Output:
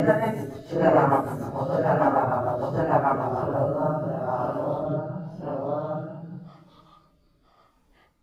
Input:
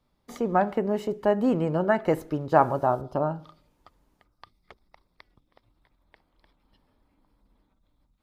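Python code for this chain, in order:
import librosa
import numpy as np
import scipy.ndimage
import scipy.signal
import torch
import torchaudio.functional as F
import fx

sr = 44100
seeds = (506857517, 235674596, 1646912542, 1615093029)

y = fx.echo_multitap(x, sr, ms=(226, 252, 283, 466), db=(-5.0, -6.0, -19.0, -3.0))
y = fx.paulstretch(y, sr, seeds[0], factor=4.3, window_s=0.05, from_s=2.35)
y = fx.rotary_switch(y, sr, hz=6.7, then_hz=0.9, switch_at_s=3.23)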